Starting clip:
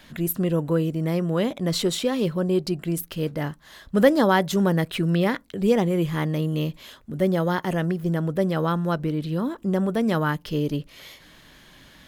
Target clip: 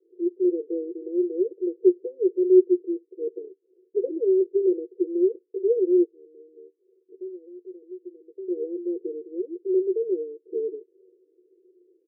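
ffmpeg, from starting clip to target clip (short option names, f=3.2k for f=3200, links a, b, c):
-filter_complex "[0:a]aecho=1:1:5.9:0.55,asettb=1/sr,asplit=3[a][b][c];[a]atrim=end=6.044[d];[b]atrim=start=6.04:end=8.48,asetpts=PTS-STARTPTS,afade=t=in:d=0.004:c=qsin,afade=t=out:st=2.436:d=0.004:c=qsin,acompressor=threshold=-38dB:ratio=4[e];[c]atrim=start=8.476[f];[d][e]acrossfade=d=0.004:c1=hsin:c2=qsin[g];[g][f]acrossfade=d=0.004:c1=qsin:c2=hsin,asuperpass=centerf=400:order=8:qfactor=3.8,volume=6.5dB"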